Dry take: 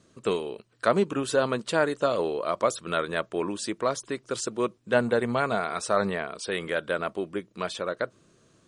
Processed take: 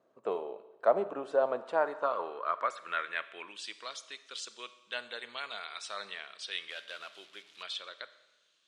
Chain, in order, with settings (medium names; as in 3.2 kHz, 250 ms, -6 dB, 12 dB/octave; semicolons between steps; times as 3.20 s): 6.70–7.63 s: one-bit delta coder 64 kbps, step -42.5 dBFS; bass shelf 150 Hz -7 dB; Schroeder reverb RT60 1.1 s, combs from 28 ms, DRR 13.5 dB; band-pass sweep 700 Hz -> 3.4 kHz, 1.55–3.83 s; trim +1.5 dB